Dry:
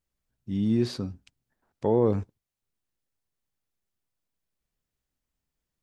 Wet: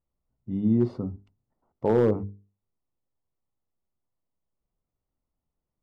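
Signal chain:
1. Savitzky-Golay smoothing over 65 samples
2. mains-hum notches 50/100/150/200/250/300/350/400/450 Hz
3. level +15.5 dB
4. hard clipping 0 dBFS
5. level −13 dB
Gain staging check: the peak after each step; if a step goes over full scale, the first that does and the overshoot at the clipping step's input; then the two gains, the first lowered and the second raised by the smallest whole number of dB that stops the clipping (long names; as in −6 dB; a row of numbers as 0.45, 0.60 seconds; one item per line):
−10.5, −11.0, +4.5, 0.0, −13.0 dBFS
step 3, 4.5 dB
step 3 +10.5 dB, step 5 −8 dB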